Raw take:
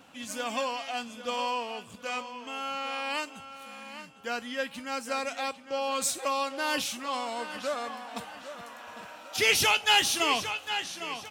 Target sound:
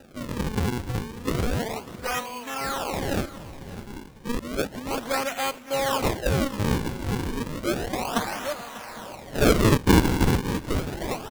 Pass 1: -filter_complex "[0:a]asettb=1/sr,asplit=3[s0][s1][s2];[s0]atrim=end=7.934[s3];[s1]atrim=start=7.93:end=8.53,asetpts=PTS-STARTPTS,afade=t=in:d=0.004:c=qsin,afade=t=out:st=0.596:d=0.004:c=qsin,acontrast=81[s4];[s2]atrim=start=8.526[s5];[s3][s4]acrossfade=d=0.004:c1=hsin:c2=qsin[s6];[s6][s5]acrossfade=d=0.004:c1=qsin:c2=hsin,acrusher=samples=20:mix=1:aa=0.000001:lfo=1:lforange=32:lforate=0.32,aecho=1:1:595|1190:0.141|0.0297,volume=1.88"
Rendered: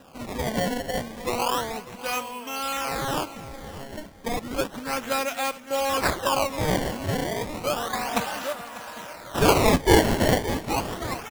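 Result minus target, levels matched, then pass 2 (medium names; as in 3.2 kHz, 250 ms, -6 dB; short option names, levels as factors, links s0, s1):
decimation with a swept rate: distortion -7 dB
-filter_complex "[0:a]asettb=1/sr,asplit=3[s0][s1][s2];[s0]atrim=end=7.934[s3];[s1]atrim=start=7.93:end=8.53,asetpts=PTS-STARTPTS,afade=t=in:d=0.004:c=qsin,afade=t=out:st=0.596:d=0.004:c=qsin,acontrast=81[s4];[s2]atrim=start=8.526[s5];[s3][s4]acrossfade=d=0.004:c1=hsin:c2=qsin[s6];[s6][s5]acrossfade=d=0.004:c1=qsin:c2=hsin,acrusher=samples=40:mix=1:aa=0.000001:lfo=1:lforange=64:lforate=0.32,aecho=1:1:595|1190:0.141|0.0297,volume=1.88"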